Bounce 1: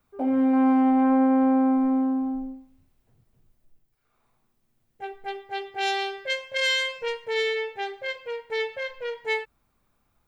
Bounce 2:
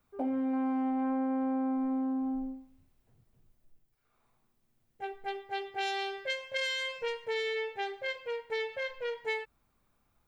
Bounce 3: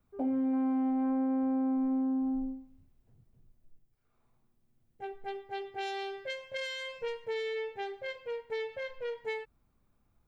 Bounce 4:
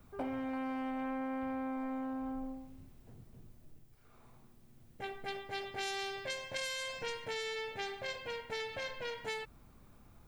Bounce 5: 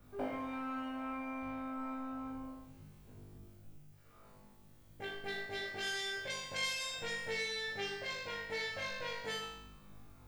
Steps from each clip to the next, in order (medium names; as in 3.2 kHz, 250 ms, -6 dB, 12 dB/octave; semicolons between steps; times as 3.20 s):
compression 10:1, threshold -26 dBFS, peak gain reduction 9 dB; trim -3 dB
bass shelf 480 Hz +10 dB; trim -6 dB
spectrum-flattening compressor 2:1; trim +1 dB
flutter echo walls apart 3.4 m, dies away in 0.8 s; trim -3 dB